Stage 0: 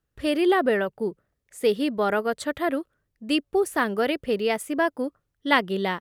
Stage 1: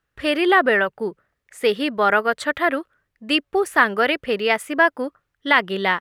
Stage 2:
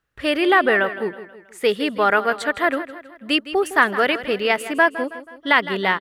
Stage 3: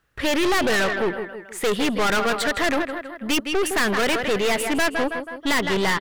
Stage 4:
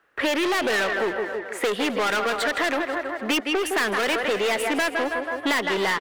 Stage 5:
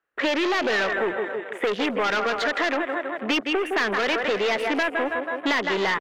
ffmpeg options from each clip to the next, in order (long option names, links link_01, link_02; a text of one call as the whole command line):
ffmpeg -i in.wav -af "equalizer=frequency=1700:width=0.49:gain=12,alimiter=level_in=0dB:limit=-1dB:release=50:level=0:latency=1,volume=-1dB" out.wav
ffmpeg -i in.wav -af "aecho=1:1:161|322|483|644:0.2|0.0938|0.0441|0.0207" out.wav
ffmpeg -i in.wav -af "aeval=exprs='(tanh(25.1*val(0)+0.4)-tanh(0.4))/25.1':channel_layout=same,volume=9dB" out.wav
ffmpeg -i in.wav -filter_complex "[0:a]acrossover=split=270 2600:gain=0.0708 1 0.251[link_01][link_02][link_03];[link_01][link_02][link_03]amix=inputs=3:normalize=0,acrossover=split=160|3000[link_04][link_05][link_06];[link_05]acompressor=threshold=-30dB:ratio=6[link_07];[link_04][link_07][link_06]amix=inputs=3:normalize=0,asplit=5[link_08][link_09][link_10][link_11][link_12];[link_09]adelay=260,afreqshift=56,volume=-15.5dB[link_13];[link_10]adelay=520,afreqshift=112,volume=-23dB[link_14];[link_11]adelay=780,afreqshift=168,volume=-30.6dB[link_15];[link_12]adelay=1040,afreqshift=224,volume=-38.1dB[link_16];[link_08][link_13][link_14][link_15][link_16]amix=inputs=5:normalize=0,volume=7.5dB" out.wav
ffmpeg -i in.wav -af "afwtdn=0.02" out.wav